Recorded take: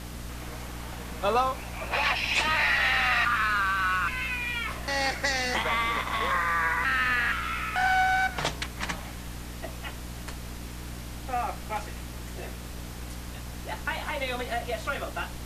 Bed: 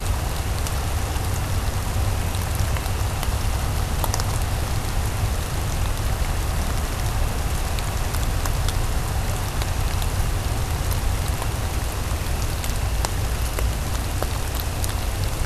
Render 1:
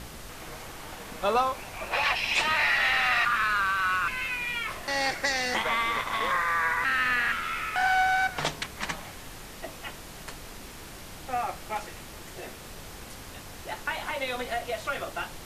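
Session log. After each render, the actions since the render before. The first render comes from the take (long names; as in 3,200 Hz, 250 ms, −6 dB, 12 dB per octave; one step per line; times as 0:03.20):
hum removal 60 Hz, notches 5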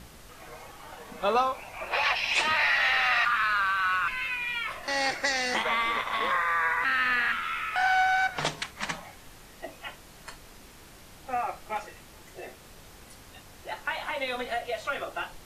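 noise reduction from a noise print 7 dB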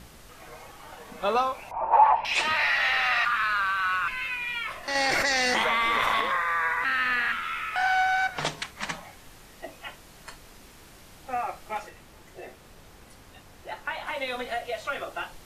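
0:01.71–0:02.25: low-pass with resonance 900 Hz, resonance Q 9
0:04.95–0:06.21: envelope flattener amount 100%
0:11.89–0:14.07: high-shelf EQ 2,700 Hz −4.5 dB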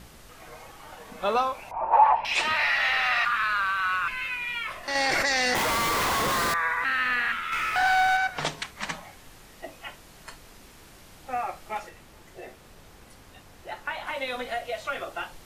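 0:05.55–0:06.54: comparator with hysteresis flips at −32 dBFS
0:07.52–0:08.17: power curve on the samples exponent 0.7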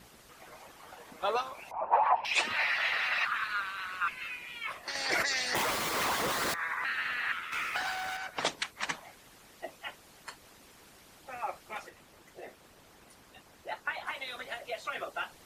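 high-pass filter 150 Hz 6 dB per octave
harmonic and percussive parts rebalanced harmonic −17 dB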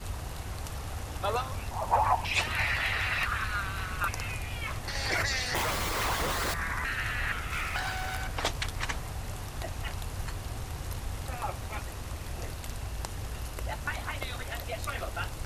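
mix in bed −13.5 dB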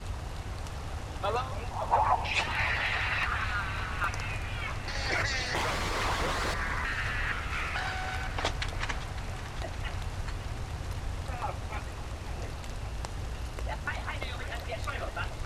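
high-frequency loss of the air 57 metres
delay that swaps between a low-pass and a high-pass 279 ms, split 850 Hz, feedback 82%, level −12.5 dB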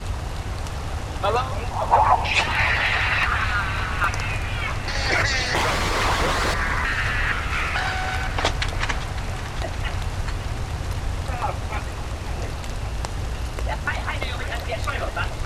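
level +9 dB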